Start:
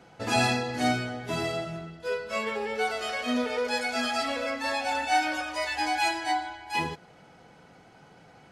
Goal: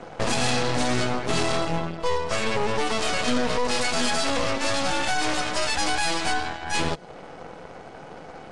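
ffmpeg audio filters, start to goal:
-filter_complex "[0:a]equalizer=f=530:t=o:w=1.6:g=10,alimiter=limit=-17dB:level=0:latency=1:release=33,acrossover=split=230|3000[a][b][c];[b]acompressor=threshold=-39dB:ratio=2.5[d];[a][d][c]amix=inputs=3:normalize=0,aeval=exprs='0.1*(cos(1*acos(clip(val(0)/0.1,-1,1)))-cos(1*PI/2))+0.0282*(cos(8*acos(clip(val(0)/0.1,-1,1)))-cos(8*PI/2))':c=same,aresample=22050,aresample=44100,volume=6dB"

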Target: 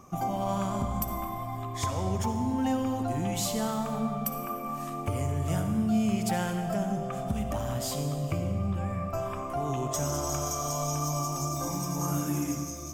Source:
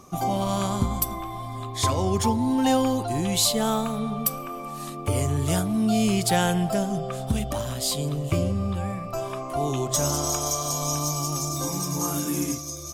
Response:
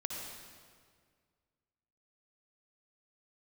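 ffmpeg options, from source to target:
-filter_complex "[0:a]equalizer=f=400:t=o:w=0.67:g=-4,equalizer=f=4k:t=o:w=0.67:g=-11,equalizer=f=10k:t=o:w=0.67:g=-9,acompressor=threshold=-26dB:ratio=3,asplit=2[a][b];[1:a]atrim=start_sample=2205[c];[b][c]afir=irnorm=-1:irlink=0,volume=0.5dB[d];[a][d]amix=inputs=2:normalize=0,volume=-7dB"

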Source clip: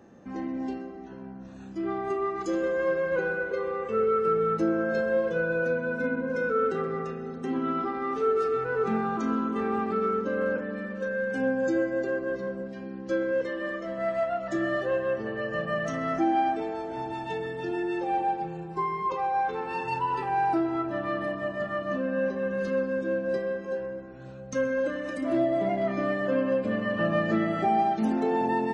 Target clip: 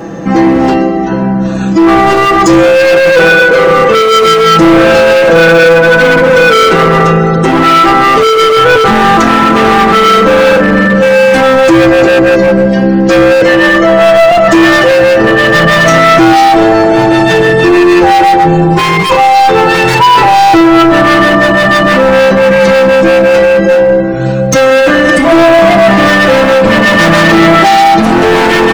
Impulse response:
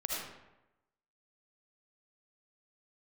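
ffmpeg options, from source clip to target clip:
-af "asoftclip=type=hard:threshold=-29dB,aecho=1:1:6.1:0.98,apsyclip=30.5dB,volume=-1.5dB"

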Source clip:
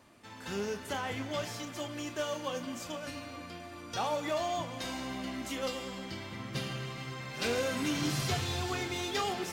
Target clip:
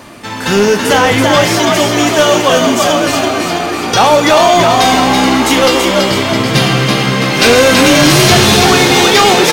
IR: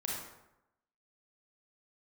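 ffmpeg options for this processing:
-filter_complex "[0:a]equalizer=f=81:w=5.2:g=-12.5,asplit=8[a][b][c][d][e][f][g][h];[b]adelay=331,afreqshift=65,volume=-4.5dB[i];[c]adelay=662,afreqshift=130,volume=-9.9dB[j];[d]adelay=993,afreqshift=195,volume=-15.2dB[k];[e]adelay=1324,afreqshift=260,volume=-20.6dB[l];[f]adelay=1655,afreqshift=325,volume=-25.9dB[m];[g]adelay=1986,afreqshift=390,volume=-31.3dB[n];[h]adelay=2317,afreqshift=455,volume=-36.6dB[o];[a][i][j][k][l][m][n][o]amix=inputs=8:normalize=0,apsyclip=28.5dB,bandreject=f=7.4k:w=27,volume=-2dB"

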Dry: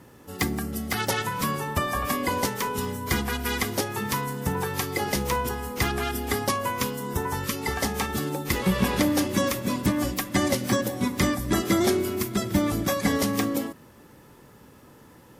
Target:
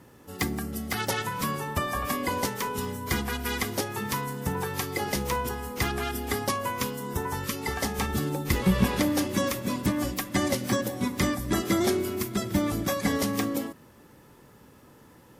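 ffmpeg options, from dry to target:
-filter_complex "[0:a]asettb=1/sr,asplit=3[a][b][c];[a]atrim=end=7.984[d];[b]atrim=start=7.98:end=8.87,asetpts=PTS-STARTPTS,afade=t=in:d=0.004:c=qsin,afade=t=out:st=0.886:d=0.004:c=qsin,lowshelf=f=180:g=7.5[e];[c]atrim=start=8.866[f];[d][e]acrossfade=d=0.004:c1=hsin:c2=qsin[g];[g][f]acrossfade=d=0.004:c1=qsin:c2=hsin,volume=-2.5dB"

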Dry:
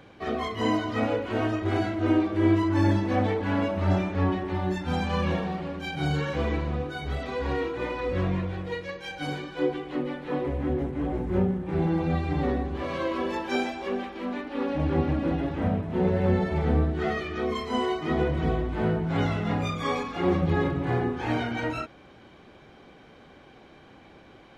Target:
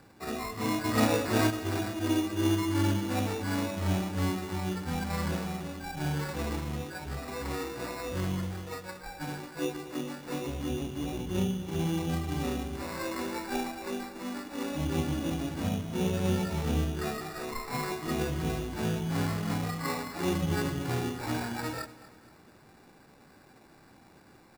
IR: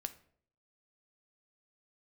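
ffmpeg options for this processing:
-filter_complex "[0:a]highpass=75,equalizer=f=530:t=o:w=1.2:g=-5,asplit=3[a][b][c];[a]afade=t=out:st=0.84:d=0.02[d];[b]acontrast=78,afade=t=in:st=0.84:d=0.02,afade=t=out:st=1.49:d=0.02[e];[c]afade=t=in:st=1.49:d=0.02[f];[d][e][f]amix=inputs=3:normalize=0,asettb=1/sr,asplit=3[g][h][i];[g]atrim=end=17.294[j];[h]atrim=start=17.29:end=17.92,asetpts=PTS-STARTPTS,afade=t=in:d=0.004:c=qsin,afade=t=out:st=0.626:d=0.004:c=qsin,aemphasis=mode=production:type=riaa[k];[i]atrim=start=17.916[l];[j][k]acrossfade=d=0.004:c1=hsin:c2=qsin[m];[m][l]acrossfade=d=0.004:c1=qsin:c2=hsin,acrusher=samples=14:mix=1:aa=0.000001,asplit=2[n][o];[o]aecho=0:1:236|472|708|944:0.133|0.0587|0.0258|0.0114[p];[n][p]amix=inputs=2:normalize=0,volume=-3.5dB"

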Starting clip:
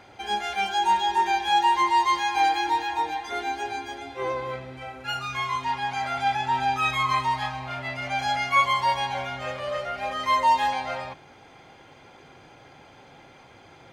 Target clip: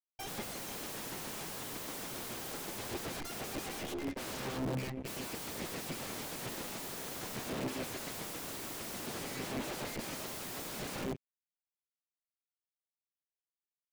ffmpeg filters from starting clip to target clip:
-filter_complex "[0:a]bandreject=f=123.4:t=h:w=4,bandreject=f=246.8:t=h:w=4,bandreject=f=370.2:t=h:w=4,bandreject=f=493.6:t=h:w=4,bandreject=f=617:t=h:w=4,bandreject=f=740.4:t=h:w=4,bandreject=f=863.8:t=h:w=4,bandreject=f=987.2:t=h:w=4,bandreject=f=1.1106k:t=h:w=4,bandreject=f=1.234k:t=h:w=4,bandreject=f=1.3574k:t=h:w=4,bandreject=f=1.4808k:t=h:w=4,bandreject=f=1.6042k:t=h:w=4,bandreject=f=1.7276k:t=h:w=4,bandreject=f=1.851k:t=h:w=4,bandreject=f=1.9744k:t=h:w=4,bandreject=f=2.0978k:t=h:w=4,bandreject=f=2.2212k:t=h:w=4,bandreject=f=2.3446k:t=h:w=4,bandreject=f=2.468k:t=h:w=4,bandreject=f=2.5914k:t=h:w=4,aeval=exprs='0.355*(cos(1*acos(clip(val(0)/0.355,-1,1)))-cos(1*PI/2))+0.0178*(cos(5*acos(clip(val(0)/0.355,-1,1)))-cos(5*PI/2))+0.126*(cos(6*acos(clip(val(0)/0.355,-1,1)))-cos(6*PI/2))':c=same,firequalizer=gain_entry='entry(100,0);entry(1300,-28);entry(2000,-3);entry(3000,-4);entry(9000,2)':delay=0.05:min_phase=1,asplit=2[a][b];[b]aecho=0:1:99:0.15[c];[a][c]amix=inputs=2:normalize=0,afftdn=nr=19:nf=-35,acrusher=bits=7:mix=0:aa=0.5,aeval=exprs='(mod(100*val(0)+1,2)-1)/100':c=same,areverse,acompressor=mode=upward:threshold=-57dB:ratio=2.5,areverse,equalizer=f=270:w=0.31:g=13"

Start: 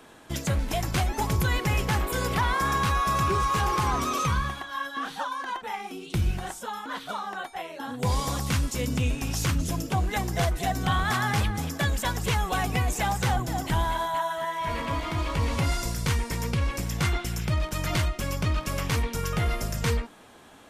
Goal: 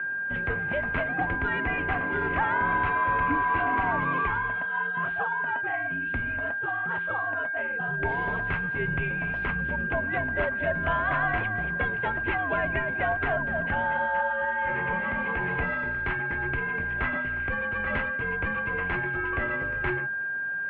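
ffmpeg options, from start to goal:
-af "aeval=exprs='val(0)+0.0398*sin(2*PI*1700*n/s)':c=same,highpass=f=170:t=q:w=0.5412,highpass=f=170:t=q:w=1.307,lowpass=f=2.6k:t=q:w=0.5176,lowpass=f=2.6k:t=q:w=0.7071,lowpass=f=2.6k:t=q:w=1.932,afreqshift=-100"

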